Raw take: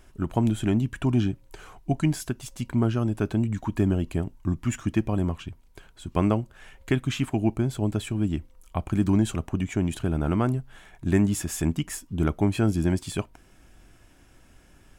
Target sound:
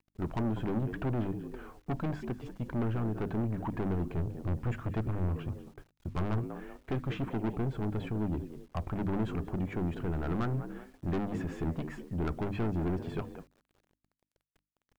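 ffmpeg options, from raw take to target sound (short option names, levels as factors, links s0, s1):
-filter_complex "[0:a]lowpass=1600,asplit=4[s0][s1][s2][s3];[s1]adelay=193,afreqshift=66,volume=0.126[s4];[s2]adelay=386,afreqshift=132,volume=0.0519[s5];[s3]adelay=579,afreqshift=198,volume=0.0211[s6];[s0][s4][s5][s6]amix=inputs=4:normalize=0,asettb=1/sr,asplit=3[s7][s8][s9];[s7]atrim=end=4.084[s10];[s8]atrim=start=4.08:end=6.38,asetpts=PTS-STARTPTS,afade=t=in:d=0.004:c=qsin,afade=t=out:st=2.296:d=0.004:c=qsin,adynamicequalizer=threshold=0.0112:dfrequency=110:dqfactor=1:tfrequency=110:tqfactor=1:attack=5:release=100:ratio=0.375:range=3.5:mode=boostabove:tftype=bell[s11];[s9]atrim=start=6.376[s12];[s10][s11]acrossfade=d=0.004:c1=hsin:c2=qsin[s13];[s13][s12]acrossfade=d=0.004:c1=qsin:c2=hsin,agate=range=0.1:threshold=0.00631:ratio=16:detection=peak,aeval=exprs='(tanh(25.1*val(0)+0.2)-tanh(0.2))/25.1':c=same,acrusher=bits=10:mix=0:aa=0.000001,bandreject=f=50:t=h:w=6,bandreject=f=100:t=h:w=6,bandreject=f=150:t=h:w=6,bandreject=f=200:t=h:w=6,bandreject=f=250:t=h:w=6,bandreject=f=300:t=h:w=6"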